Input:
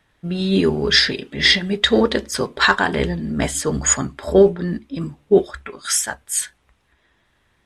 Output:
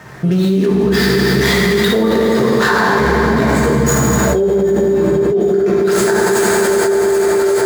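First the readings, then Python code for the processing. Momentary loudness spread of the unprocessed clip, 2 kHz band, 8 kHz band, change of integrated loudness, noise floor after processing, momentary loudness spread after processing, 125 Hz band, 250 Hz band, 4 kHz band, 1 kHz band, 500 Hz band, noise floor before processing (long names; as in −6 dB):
12 LU, +4.0 dB, +0.5 dB, +5.0 dB, −15 dBFS, 1 LU, +9.0 dB, +8.0 dB, −3.0 dB, +8.5 dB, +8.5 dB, −64 dBFS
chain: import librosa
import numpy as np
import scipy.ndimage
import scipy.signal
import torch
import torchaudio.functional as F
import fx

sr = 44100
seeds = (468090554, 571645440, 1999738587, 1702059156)

p1 = scipy.signal.medfilt(x, 15)
p2 = scipy.signal.sosfilt(scipy.signal.butter(2, 73.0, 'highpass', fs=sr, output='sos'), p1)
p3 = fx.hum_notches(p2, sr, base_hz=50, count=4)
p4 = p3 + fx.echo_split(p3, sr, split_hz=350.0, low_ms=126, high_ms=770, feedback_pct=52, wet_db=-15.5, dry=0)
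p5 = fx.rev_fdn(p4, sr, rt60_s=3.0, lf_ratio=1.0, hf_ratio=0.8, size_ms=45.0, drr_db=-6.0)
p6 = fx.env_flatten(p5, sr, amount_pct=100)
y = p6 * librosa.db_to_amplitude(-13.5)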